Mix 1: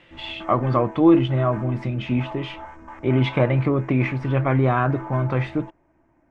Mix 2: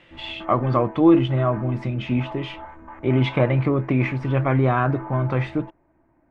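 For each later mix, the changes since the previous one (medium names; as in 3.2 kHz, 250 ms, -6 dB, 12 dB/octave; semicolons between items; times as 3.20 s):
background: add boxcar filter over 9 samples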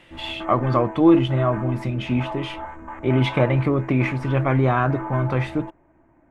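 background +4.5 dB; master: remove distance through air 100 m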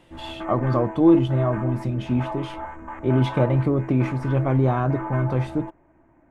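speech: add peaking EQ 2 kHz -11.5 dB 1.8 oct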